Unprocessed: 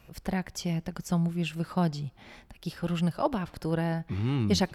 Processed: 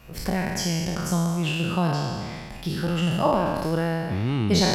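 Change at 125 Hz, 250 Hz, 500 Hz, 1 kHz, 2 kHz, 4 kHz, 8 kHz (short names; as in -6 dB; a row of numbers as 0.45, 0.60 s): +4.5, +4.5, +7.5, +8.0, +8.5, +9.0, +9.5 dB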